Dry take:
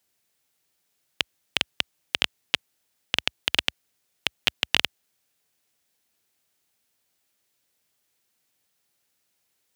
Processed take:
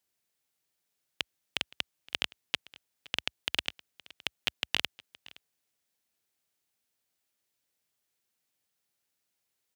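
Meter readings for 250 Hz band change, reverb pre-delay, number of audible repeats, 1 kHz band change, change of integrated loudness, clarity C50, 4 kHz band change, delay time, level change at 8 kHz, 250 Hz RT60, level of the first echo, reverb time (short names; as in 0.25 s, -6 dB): -8.0 dB, none, 1, -8.0 dB, -8.0 dB, none, -8.0 dB, 0.518 s, -8.0 dB, none, -22.0 dB, none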